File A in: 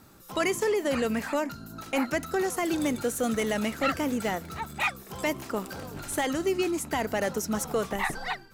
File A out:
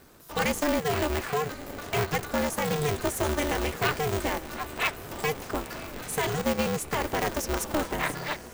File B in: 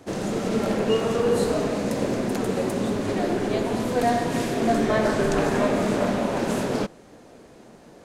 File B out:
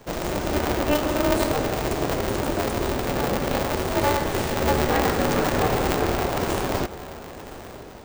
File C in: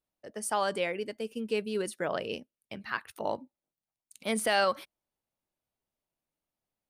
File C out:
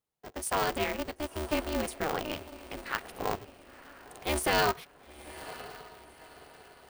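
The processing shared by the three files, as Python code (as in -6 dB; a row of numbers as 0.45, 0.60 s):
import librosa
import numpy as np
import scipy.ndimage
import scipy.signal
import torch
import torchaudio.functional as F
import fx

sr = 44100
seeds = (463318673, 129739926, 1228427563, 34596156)

y = fx.echo_diffused(x, sr, ms=995, feedback_pct=41, wet_db=-15.5)
y = y * np.sign(np.sin(2.0 * np.pi * 150.0 * np.arange(len(y)) / sr))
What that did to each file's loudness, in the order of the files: 0.0, 0.0, -0.5 LU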